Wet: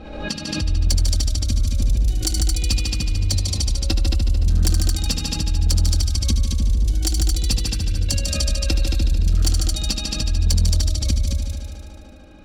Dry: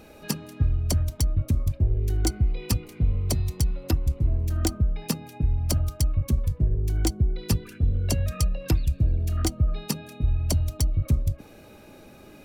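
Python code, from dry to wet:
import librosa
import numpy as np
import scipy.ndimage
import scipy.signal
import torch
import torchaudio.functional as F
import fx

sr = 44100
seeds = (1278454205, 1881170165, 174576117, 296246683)

p1 = fx.env_lowpass(x, sr, base_hz=1200.0, full_db=-18.0)
p2 = fx.graphic_eq(p1, sr, hz=(125, 250, 500, 1000, 2000, 4000, 8000), db=(-5, -9, -8, -8, -6, 7, 3))
p3 = fx.over_compress(p2, sr, threshold_db=-28.0, ratio=-1.0)
p4 = p2 + F.gain(torch.from_numpy(p3), -2.0).numpy()
p5 = fx.low_shelf(p4, sr, hz=61.0, db=-4.5)
p6 = p5 + 0.55 * np.pad(p5, (int(3.7 * sr / 1000.0), 0))[:len(p5)]
p7 = p6 + fx.echo_heads(p6, sr, ms=74, heads='all three', feedback_pct=57, wet_db=-6.5, dry=0)
p8 = np.clip(p7, -10.0 ** (-12.5 / 20.0), 10.0 ** (-12.5 / 20.0))
y = fx.pre_swell(p8, sr, db_per_s=49.0)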